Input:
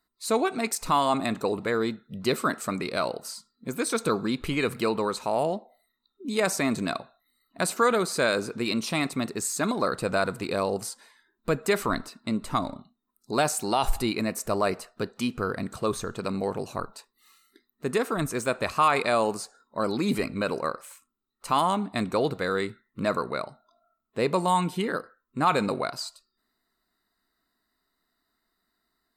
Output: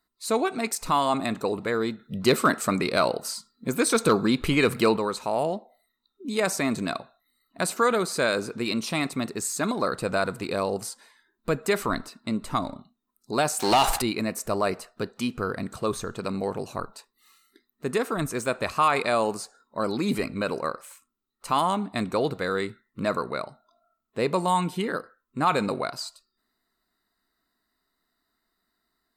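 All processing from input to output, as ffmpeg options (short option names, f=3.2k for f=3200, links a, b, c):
-filter_complex "[0:a]asettb=1/sr,asplit=3[a][b][c];[a]atrim=end=1.994[d];[b]atrim=start=1.99:end=4.97,asetpts=PTS-STARTPTS,afade=t=in:d=0.004:c=qsin,afade=t=out:st=2.976:d=0.004:c=qsin,asoftclip=type=hard:threshold=-15.5dB,acontrast=32[e];[c]atrim=start=4.966[f];[d][e]acrossfade=d=0.004:c1=hsin:c2=qsin[g];[g][f]acrossfade=d=0.004:c1=qsin:c2=hsin,asettb=1/sr,asplit=3[h][i][j];[h]atrim=end=13.604[k];[i]atrim=start=13.6:end=14.02,asetpts=PTS-STARTPTS,afade=t=in:d=0.004:c=qsin,afade=t=out:st=0.416:d=0.004:c=qsin,acompressor=mode=upward:threshold=-36dB:ratio=2.5:attack=3.2:release=140:knee=2.83:detection=peak,aeval=exprs='sgn(val(0))*max(abs(val(0))-0.0075,0)':c=same,asplit=2[l][m];[m]highpass=f=720:p=1,volume=21dB,asoftclip=type=tanh:threshold=-10.5dB[n];[l][n]amix=inputs=2:normalize=0,lowpass=f=7.1k:p=1,volume=-6dB[o];[j]atrim=start=14.016[p];[k][o]acrossfade=d=0.004:c1=hsin:c2=qsin[q];[q][p]acrossfade=d=0.004:c1=qsin:c2=hsin"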